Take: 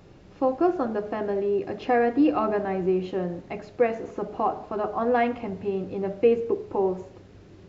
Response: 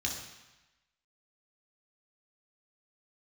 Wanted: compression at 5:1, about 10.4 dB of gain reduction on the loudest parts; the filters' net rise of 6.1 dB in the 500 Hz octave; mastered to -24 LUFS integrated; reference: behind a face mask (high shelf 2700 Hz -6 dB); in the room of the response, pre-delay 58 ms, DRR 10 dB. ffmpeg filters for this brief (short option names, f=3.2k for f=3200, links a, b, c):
-filter_complex "[0:a]equalizer=f=500:t=o:g=7.5,acompressor=threshold=-19dB:ratio=5,asplit=2[a][b];[1:a]atrim=start_sample=2205,adelay=58[c];[b][c]afir=irnorm=-1:irlink=0,volume=-14dB[d];[a][d]amix=inputs=2:normalize=0,highshelf=f=2.7k:g=-6,volume=1dB"